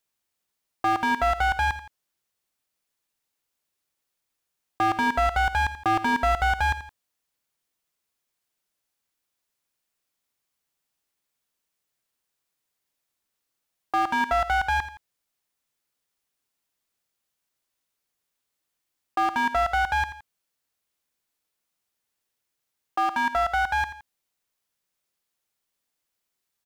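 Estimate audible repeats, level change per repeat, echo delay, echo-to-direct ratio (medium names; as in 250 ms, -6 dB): 2, -7.5 dB, 84 ms, -12.5 dB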